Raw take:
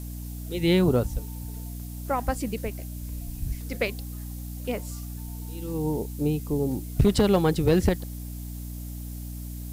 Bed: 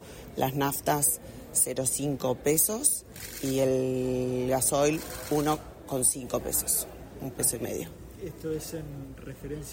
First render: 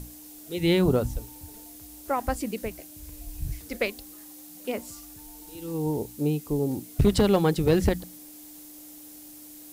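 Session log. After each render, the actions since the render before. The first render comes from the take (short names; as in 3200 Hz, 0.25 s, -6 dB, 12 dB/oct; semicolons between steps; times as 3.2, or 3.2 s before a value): notches 60/120/180/240 Hz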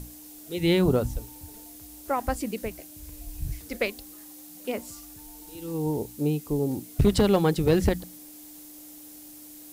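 nothing audible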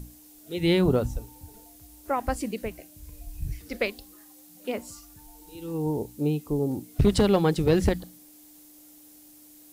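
noise print and reduce 6 dB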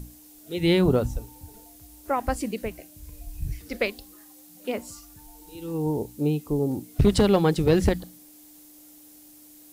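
gain +1.5 dB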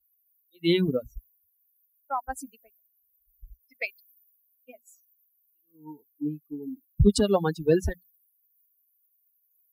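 per-bin expansion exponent 3; three-band expander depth 40%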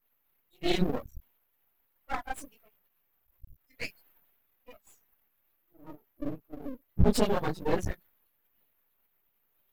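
phase scrambler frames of 50 ms; half-wave rectifier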